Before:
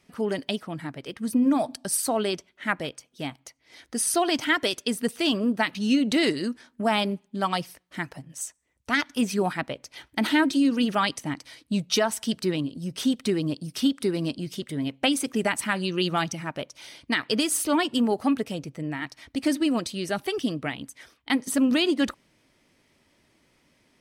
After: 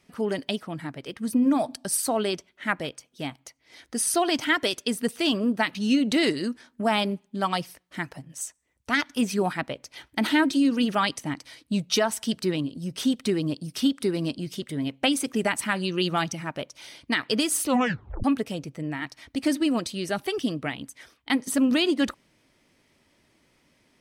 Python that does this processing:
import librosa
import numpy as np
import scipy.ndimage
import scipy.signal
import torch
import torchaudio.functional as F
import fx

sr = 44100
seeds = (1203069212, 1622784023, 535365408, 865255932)

y = fx.edit(x, sr, fx.tape_stop(start_s=17.66, length_s=0.58), tone=tone)